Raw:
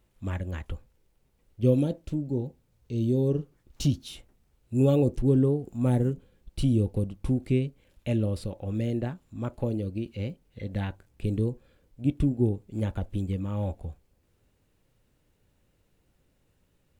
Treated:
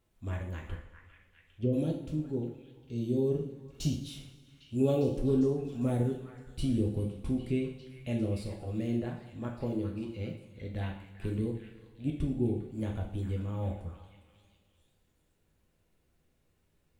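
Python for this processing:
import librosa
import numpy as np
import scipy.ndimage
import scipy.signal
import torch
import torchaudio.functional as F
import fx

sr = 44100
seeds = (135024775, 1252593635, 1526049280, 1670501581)

y = fx.env_lowpass_down(x, sr, base_hz=460.0, full_db=-18.5, at=(0.74, 1.72), fade=0.02)
y = fx.echo_stepped(y, sr, ms=402, hz=1500.0, octaves=0.7, feedback_pct=70, wet_db=-7)
y = fx.rev_double_slope(y, sr, seeds[0], early_s=0.54, late_s=2.1, knee_db=-17, drr_db=0.0)
y = F.gain(torch.from_numpy(y), -7.0).numpy()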